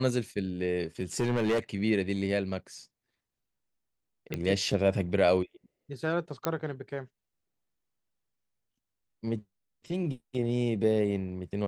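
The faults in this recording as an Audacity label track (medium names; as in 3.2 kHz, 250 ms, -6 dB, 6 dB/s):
1.000000	1.590000	clipped -23 dBFS
4.340000	4.340000	pop -18 dBFS
6.450000	6.450000	pop -12 dBFS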